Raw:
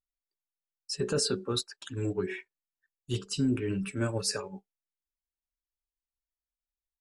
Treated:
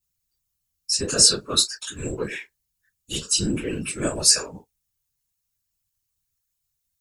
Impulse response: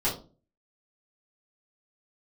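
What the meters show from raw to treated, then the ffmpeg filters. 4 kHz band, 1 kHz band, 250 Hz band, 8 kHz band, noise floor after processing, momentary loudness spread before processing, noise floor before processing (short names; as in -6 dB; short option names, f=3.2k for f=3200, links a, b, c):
+14.0 dB, +6.5 dB, +2.0 dB, +17.5 dB, -79 dBFS, 10 LU, under -85 dBFS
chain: -filter_complex "[1:a]atrim=start_sample=2205,atrim=end_sample=3969,asetrate=61740,aresample=44100[a];[0:a][a]afir=irnorm=-1:irlink=0,crystalizer=i=9.5:c=0,afftfilt=real='hypot(re,im)*cos(2*PI*random(0))':imag='hypot(re,im)*sin(2*PI*random(1))':win_size=512:overlap=0.75,volume=-1.5dB"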